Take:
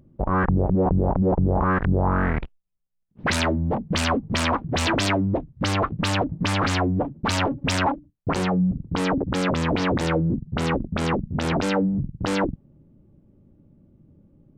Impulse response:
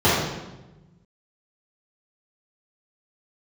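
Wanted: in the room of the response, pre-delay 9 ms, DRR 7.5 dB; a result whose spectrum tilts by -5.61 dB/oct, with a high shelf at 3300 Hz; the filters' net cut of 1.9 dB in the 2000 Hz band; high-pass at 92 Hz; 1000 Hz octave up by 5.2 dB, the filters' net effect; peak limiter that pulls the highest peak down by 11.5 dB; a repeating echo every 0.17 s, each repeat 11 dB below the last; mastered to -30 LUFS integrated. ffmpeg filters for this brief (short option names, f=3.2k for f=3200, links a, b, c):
-filter_complex "[0:a]highpass=92,equalizer=f=1k:t=o:g=8,equalizer=f=2k:t=o:g=-3.5,highshelf=f=3.3k:g=-7.5,alimiter=limit=-18dB:level=0:latency=1,aecho=1:1:170|340|510:0.282|0.0789|0.0221,asplit=2[a][b];[1:a]atrim=start_sample=2205,adelay=9[c];[b][c]afir=irnorm=-1:irlink=0,volume=-30dB[d];[a][d]amix=inputs=2:normalize=0,volume=-4.5dB"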